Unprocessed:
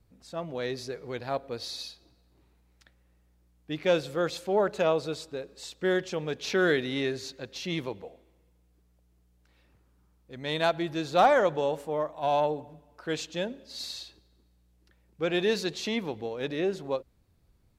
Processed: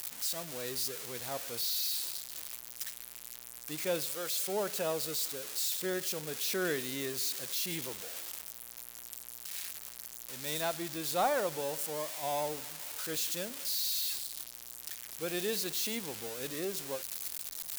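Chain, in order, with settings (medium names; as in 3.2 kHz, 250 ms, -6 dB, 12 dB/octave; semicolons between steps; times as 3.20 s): zero-crossing glitches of -17.5 dBFS; 4.05–4.48 s: bass shelf 360 Hz -11.5 dB; trim -9 dB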